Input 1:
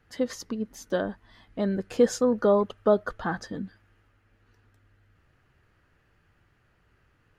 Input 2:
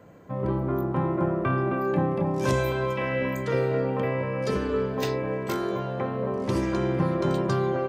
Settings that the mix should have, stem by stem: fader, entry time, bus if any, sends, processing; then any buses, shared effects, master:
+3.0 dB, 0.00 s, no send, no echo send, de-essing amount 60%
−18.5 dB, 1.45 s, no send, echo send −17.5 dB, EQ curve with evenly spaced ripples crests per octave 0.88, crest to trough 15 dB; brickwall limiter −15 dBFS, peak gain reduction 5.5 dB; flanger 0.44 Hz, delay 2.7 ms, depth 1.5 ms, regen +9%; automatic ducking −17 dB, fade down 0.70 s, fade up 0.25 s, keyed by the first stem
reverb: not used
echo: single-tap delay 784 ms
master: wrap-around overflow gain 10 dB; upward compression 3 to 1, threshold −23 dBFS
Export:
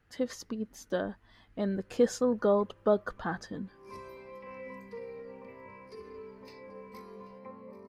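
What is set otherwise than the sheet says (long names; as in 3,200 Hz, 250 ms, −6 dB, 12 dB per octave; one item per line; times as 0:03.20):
stem 1 +3.0 dB → −4.5 dB
master: missing upward compression 3 to 1, threshold −23 dBFS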